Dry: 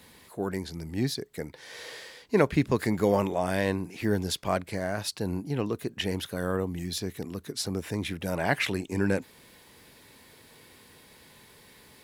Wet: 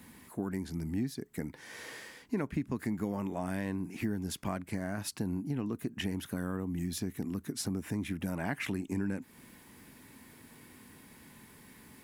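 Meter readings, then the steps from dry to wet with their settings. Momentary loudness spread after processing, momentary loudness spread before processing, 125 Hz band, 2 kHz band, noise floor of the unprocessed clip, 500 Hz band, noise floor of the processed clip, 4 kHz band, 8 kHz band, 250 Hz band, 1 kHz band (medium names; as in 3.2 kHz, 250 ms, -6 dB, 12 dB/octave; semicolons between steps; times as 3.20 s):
19 LU, 13 LU, -5.0 dB, -9.0 dB, -55 dBFS, -12.5 dB, -57 dBFS, -10.0 dB, -4.5 dB, -3.5 dB, -10.0 dB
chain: graphic EQ 250/500/4000 Hz +8/-8/-9 dB; compression 5:1, threshold -31 dBFS, peak gain reduction 14.5 dB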